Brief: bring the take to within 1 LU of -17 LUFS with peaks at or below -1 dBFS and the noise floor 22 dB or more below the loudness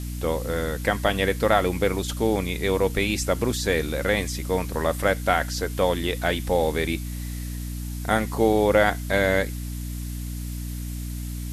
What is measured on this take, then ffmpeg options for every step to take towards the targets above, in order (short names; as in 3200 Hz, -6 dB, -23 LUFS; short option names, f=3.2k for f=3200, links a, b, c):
hum 60 Hz; harmonics up to 300 Hz; hum level -29 dBFS; noise floor -32 dBFS; noise floor target -47 dBFS; loudness -24.5 LUFS; peak -5.0 dBFS; loudness target -17.0 LUFS
-> -af "bandreject=f=60:t=h:w=6,bandreject=f=120:t=h:w=6,bandreject=f=180:t=h:w=6,bandreject=f=240:t=h:w=6,bandreject=f=300:t=h:w=6"
-af "afftdn=nr=15:nf=-32"
-af "volume=7.5dB,alimiter=limit=-1dB:level=0:latency=1"